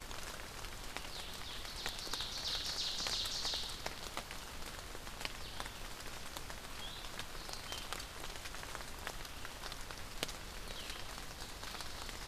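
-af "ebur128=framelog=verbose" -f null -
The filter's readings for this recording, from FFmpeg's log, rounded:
Integrated loudness:
  I:         -42.7 LUFS
  Threshold: -52.7 LUFS
Loudness range:
  LRA:         6.7 LU
  Threshold: -62.4 LUFS
  LRA low:   -45.7 LUFS
  LRA high:  -39.0 LUFS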